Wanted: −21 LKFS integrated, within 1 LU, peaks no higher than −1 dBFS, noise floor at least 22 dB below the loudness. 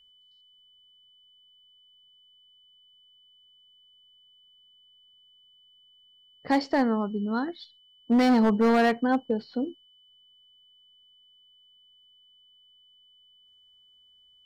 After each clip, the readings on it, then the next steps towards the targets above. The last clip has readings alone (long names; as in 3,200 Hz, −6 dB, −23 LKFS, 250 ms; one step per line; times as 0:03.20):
share of clipped samples 0.9%; peaks flattened at −16.5 dBFS; interfering tone 3,000 Hz; level of the tone −57 dBFS; integrated loudness −25.0 LKFS; sample peak −16.5 dBFS; target loudness −21.0 LKFS
→ clipped peaks rebuilt −16.5 dBFS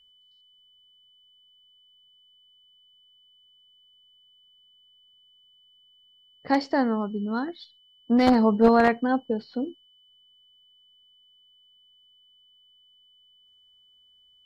share of clipped samples 0.0%; interfering tone 3,000 Hz; level of the tone −57 dBFS
→ notch filter 3,000 Hz, Q 30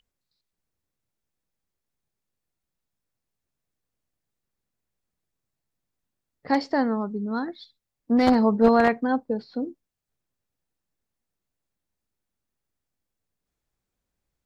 interfering tone none found; integrated loudness −23.0 LKFS; sample peak −7.0 dBFS; target loudness −21.0 LKFS
→ level +2 dB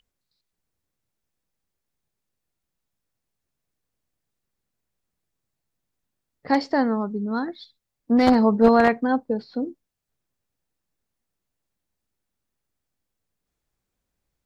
integrated loudness −21.0 LKFS; sample peak −5.0 dBFS; background noise floor −82 dBFS